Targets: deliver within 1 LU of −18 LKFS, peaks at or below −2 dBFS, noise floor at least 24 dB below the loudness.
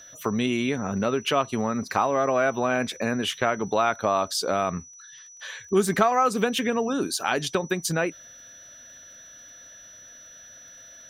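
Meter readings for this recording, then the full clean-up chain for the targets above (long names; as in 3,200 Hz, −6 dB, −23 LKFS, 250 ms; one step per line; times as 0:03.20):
crackle rate 28 per second; interfering tone 5,900 Hz; level of the tone −45 dBFS; integrated loudness −25.0 LKFS; sample peak −7.5 dBFS; target loudness −18.0 LKFS
→ click removal
notch filter 5,900 Hz, Q 30
level +7 dB
brickwall limiter −2 dBFS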